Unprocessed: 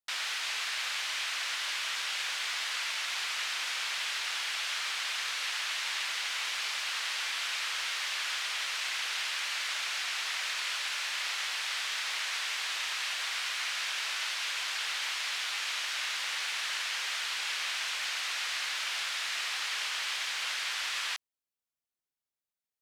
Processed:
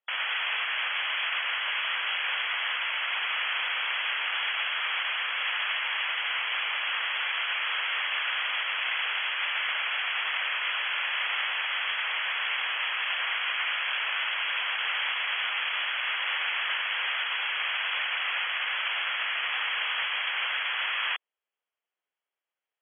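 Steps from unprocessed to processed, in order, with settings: HPF 400 Hz 24 dB/oct; limiter -26 dBFS, peak gain reduction 5.5 dB; brick-wall FIR low-pass 3400 Hz; gain +8 dB

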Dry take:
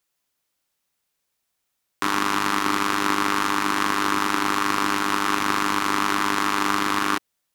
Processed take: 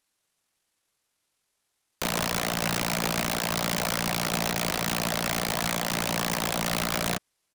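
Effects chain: pitch shift -9.5 st; wrapped overs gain 19 dB

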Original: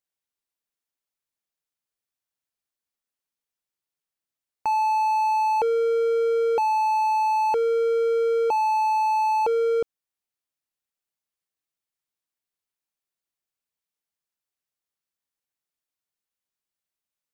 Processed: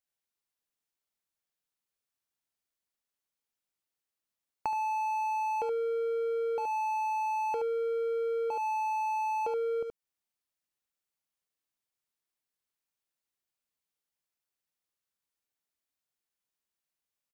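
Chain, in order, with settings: echo 74 ms -5.5 dB; compressor, threshold -28 dBFS, peak gain reduction 11 dB; gain -2 dB

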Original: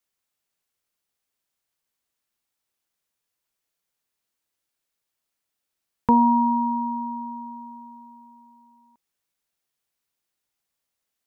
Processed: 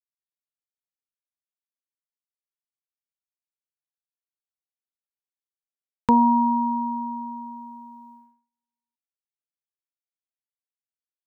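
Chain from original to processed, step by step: gate -47 dBFS, range -38 dB

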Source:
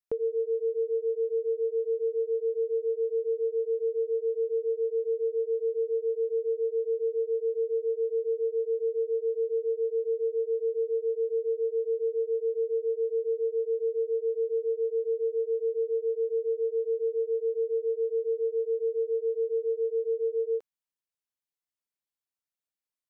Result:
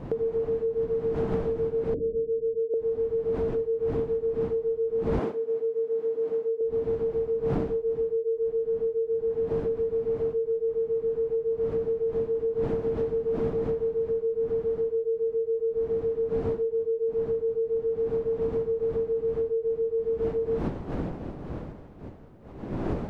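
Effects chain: wind noise 350 Hz -37 dBFS; 1.94–2.74 elliptic low-pass 550 Hz, stop band 40 dB; compressor 3:1, threshold -31 dBFS, peak gain reduction 11 dB; 5.19–6.61 HPF 270 Hz 12 dB/oct; gain +5.5 dB

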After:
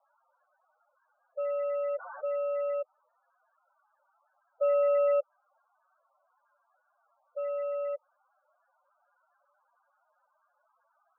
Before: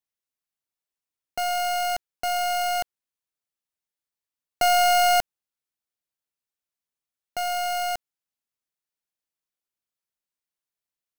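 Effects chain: tilt -3.5 dB/oct; band noise 640–1800 Hz -61 dBFS; loudest bins only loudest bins 8; mistuned SSB -140 Hz 470–2700 Hz; 1.4–2.71 fast leveller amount 70%; gain -6.5 dB

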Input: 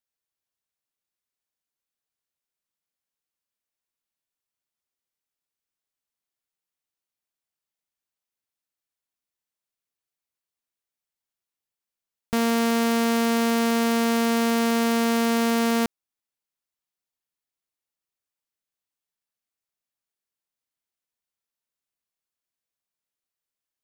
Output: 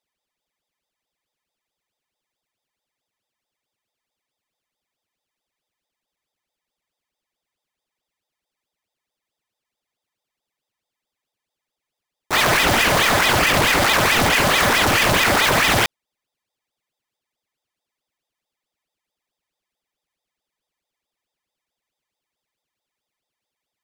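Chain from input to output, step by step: sample sorter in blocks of 32 samples; harmoniser +3 st -5 dB; ring modulator with a swept carrier 1300 Hz, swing 75%, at 4.6 Hz; gain +7 dB

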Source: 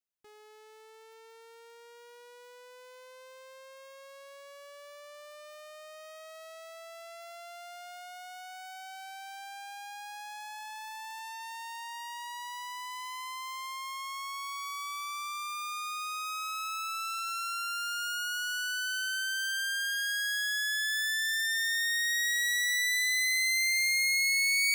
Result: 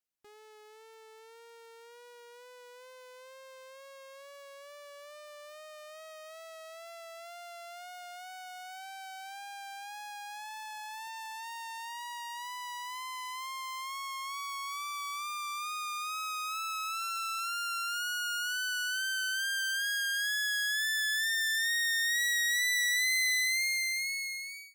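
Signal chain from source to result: ending faded out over 1.47 s; wow and flutter 28 cents

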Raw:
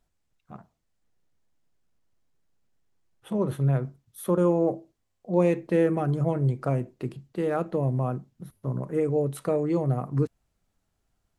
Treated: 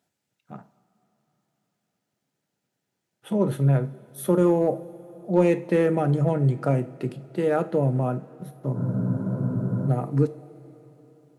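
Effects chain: HPF 120 Hz 24 dB/oct; notch 1100 Hz, Q 6.4; in parallel at -5.5 dB: overloaded stage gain 16 dB; on the sum: two-slope reverb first 0.31 s, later 4 s, from -18 dB, DRR 11.5 dB; spectral freeze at 8.78, 1.11 s

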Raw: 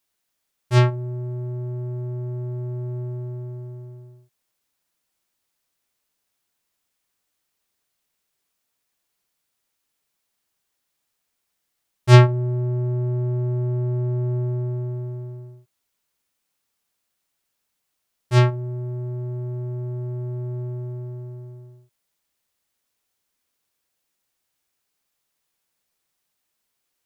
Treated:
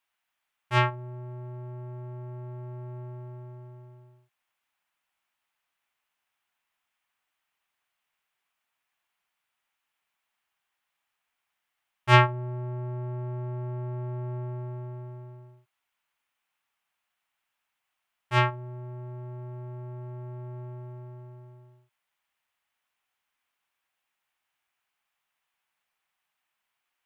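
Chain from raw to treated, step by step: band shelf 1500 Hz +12.5 dB 2.5 oct; gain -10.5 dB

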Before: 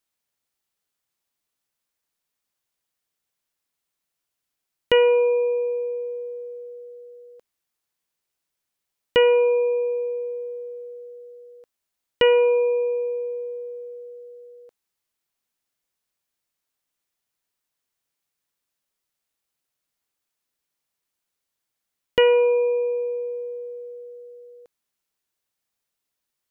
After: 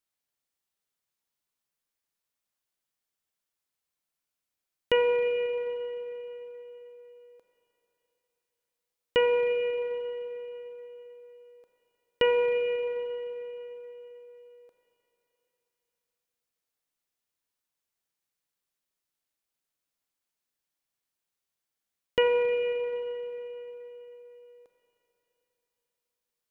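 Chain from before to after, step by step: Schroeder reverb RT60 3.6 s, combs from 30 ms, DRR 5.5 dB; gain -6 dB

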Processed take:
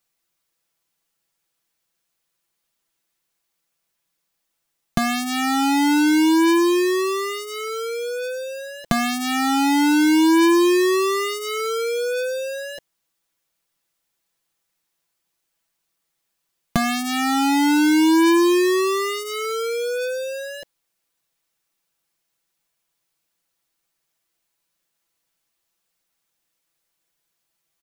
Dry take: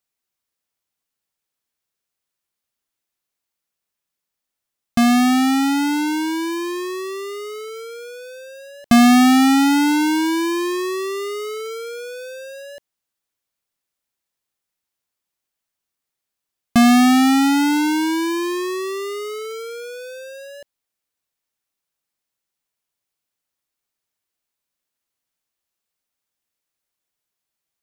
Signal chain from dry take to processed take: compressor 12:1, threshold -23 dBFS, peak gain reduction 12.5 dB; comb 6 ms, depth 64%; gain +5 dB

